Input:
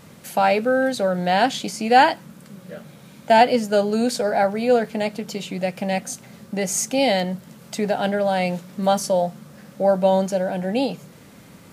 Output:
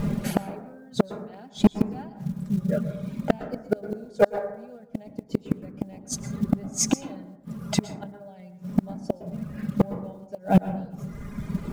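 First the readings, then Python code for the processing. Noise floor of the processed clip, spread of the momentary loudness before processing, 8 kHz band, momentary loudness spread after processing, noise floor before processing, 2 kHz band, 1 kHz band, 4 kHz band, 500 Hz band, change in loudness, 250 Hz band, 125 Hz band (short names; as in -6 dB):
-48 dBFS, 15 LU, -3.5 dB, 16 LU, -46 dBFS, -15.5 dB, -16.0 dB, -11.5 dB, -10.0 dB, -7.5 dB, -1.5 dB, +2.0 dB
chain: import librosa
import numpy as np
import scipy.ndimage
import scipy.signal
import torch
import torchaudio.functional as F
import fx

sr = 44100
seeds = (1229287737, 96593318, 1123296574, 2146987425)

y = fx.dereverb_blind(x, sr, rt60_s=1.3)
y = fx.tilt_eq(y, sr, slope=-4.0)
y = y + 0.59 * np.pad(y, (int(4.9 * sr / 1000.0), 0))[:len(y)]
y = fx.dynamic_eq(y, sr, hz=6200.0, q=0.98, threshold_db=-45.0, ratio=4.0, max_db=6)
y = fx.rider(y, sr, range_db=4, speed_s=2.0)
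y = fx.quant_float(y, sr, bits=4)
y = fx.gate_flip(y, sr, shuts_db=-11.0, range_db=-38)
y = np.clip(10.0 ** (17.5 / 20.0) * y, -1.0, 1.0) / 10.0 ** (17.5 / 20.0)
y = fx.rev_plate(y, sr, seeds[0], rt60_s=0.85, hf_ratio=0.3, predelay_ms=100, drr_db=10.5)
y = y * librosa.db_to_amplitude(7.5)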